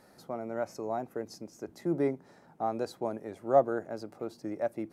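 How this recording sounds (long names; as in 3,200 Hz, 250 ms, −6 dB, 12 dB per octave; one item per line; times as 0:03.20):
background noise floor −60 dBFS
spectral slope −4.0 dB per octave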